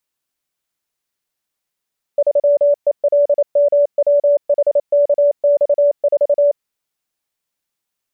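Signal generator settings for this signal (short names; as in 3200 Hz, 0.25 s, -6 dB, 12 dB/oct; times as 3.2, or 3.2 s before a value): Morse "3ELMWHKX4" 28 wpm 577 Hz -9 dBFS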